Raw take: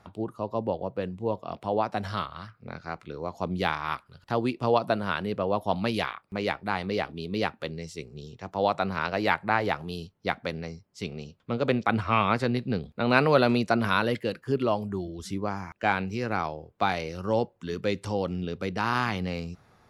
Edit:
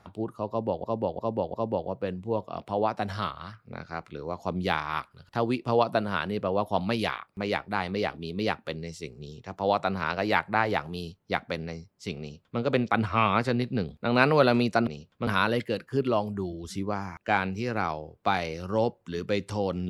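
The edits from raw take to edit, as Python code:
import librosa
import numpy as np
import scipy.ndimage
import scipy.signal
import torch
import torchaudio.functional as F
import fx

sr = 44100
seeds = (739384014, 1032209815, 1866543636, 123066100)

y = fx.edit(x, sr, fx.repeat(start_s=0.49, length_s=0.35, count=4),
    fx.duplicate(start_s=11.15, length_s=0.4, to_s=13.82), tone=tone)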